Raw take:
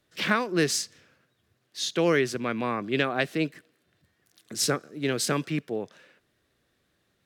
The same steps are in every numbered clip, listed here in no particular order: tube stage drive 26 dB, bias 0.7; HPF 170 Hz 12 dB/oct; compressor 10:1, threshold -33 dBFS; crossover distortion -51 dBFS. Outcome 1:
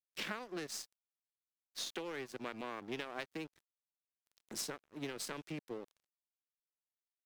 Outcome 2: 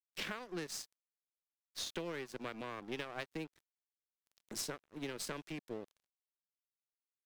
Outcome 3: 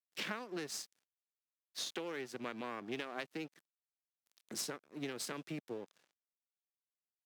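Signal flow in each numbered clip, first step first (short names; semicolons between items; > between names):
compressor > tube stage > HPF > crossover distortion; compressor > HPF > tube stage > crossover distortion; compressor > crossover distortion > tube stage > HPF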